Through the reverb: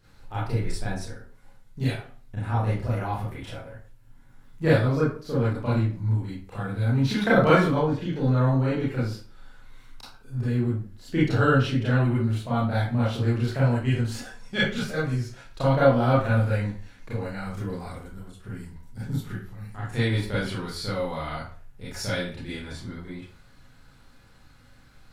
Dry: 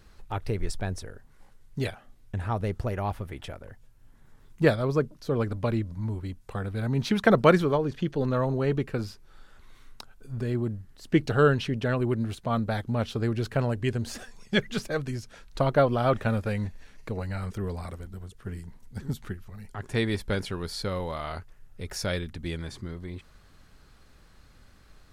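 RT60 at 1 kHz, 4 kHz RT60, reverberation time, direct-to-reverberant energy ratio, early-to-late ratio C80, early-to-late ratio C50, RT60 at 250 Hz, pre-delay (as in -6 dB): 0.40 s, 0.30 s, 0.45 s, -10.0 dB, 8.0 dB, 2.0 dB, 0.45 s, 28 ms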